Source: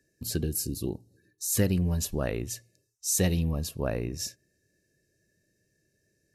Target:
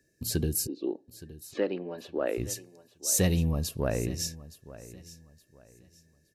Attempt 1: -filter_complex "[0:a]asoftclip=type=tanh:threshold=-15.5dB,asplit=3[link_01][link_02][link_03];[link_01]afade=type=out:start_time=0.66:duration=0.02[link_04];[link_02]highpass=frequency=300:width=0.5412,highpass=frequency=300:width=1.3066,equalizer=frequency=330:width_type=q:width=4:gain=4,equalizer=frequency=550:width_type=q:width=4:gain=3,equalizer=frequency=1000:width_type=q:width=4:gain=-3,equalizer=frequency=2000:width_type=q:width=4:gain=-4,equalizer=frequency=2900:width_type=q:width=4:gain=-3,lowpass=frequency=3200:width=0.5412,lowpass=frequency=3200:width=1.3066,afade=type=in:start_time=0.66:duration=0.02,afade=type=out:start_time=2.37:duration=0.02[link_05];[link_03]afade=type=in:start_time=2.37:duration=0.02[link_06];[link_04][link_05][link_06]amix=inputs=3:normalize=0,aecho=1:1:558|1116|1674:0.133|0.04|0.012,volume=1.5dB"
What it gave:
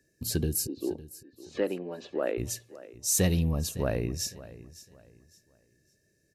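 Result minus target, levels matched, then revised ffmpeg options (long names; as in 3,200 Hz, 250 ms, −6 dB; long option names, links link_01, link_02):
echo 310 ms early
-filter_complex "[0:a]asoftclip=type=tanh:threshold=-15.5dB,asplit=3[link_01][link_02][link_03];[link_01]afade=type=out:start_time=0.66:duration=0.02[link_04];[link_02]highpass=frequency=300:width=0.5412,highpass=frequency=300:width=1.3066,equalizer=frequency=330:width_type=q:width=4:gain=4,equalizer=frequency=550:width_type=q:width=4:gain=3,equalizer=frequency=1000:width_type=q:width=4:gain=-3,equalizer=frequency=2000:width_type=q:width=4:gain=-4,equalizer=frequency=2900:width_type=q:width=4:gain=-3,lowpass=frequency=3200:width=0.5412,lowpass=frequency=3200:width=1.3066,afade=type=in:start_time=0.66:duration=0.02,afade=type=out:start_time=2.37:duration=0.02[link_05];[link_03]afade=type=in:start_time=2.37:duration=0.02[link_06];[link_04][link_05][link_06]amix=inputs=3:normalize=0,aecho=1:1:868|1736|2604:0.133|0.04|0.012,volume=1.5dB"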